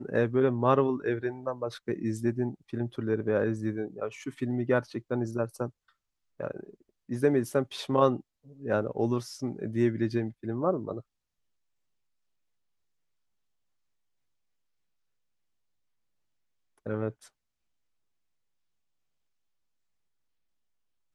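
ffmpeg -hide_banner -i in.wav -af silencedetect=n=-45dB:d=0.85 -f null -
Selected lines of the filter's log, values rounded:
silence_start: 11.01
silence_end: 16.86 | silence_duration: 5.85
silence_start: 17.27
silence_end: 21.15 | silence_duration: 3.88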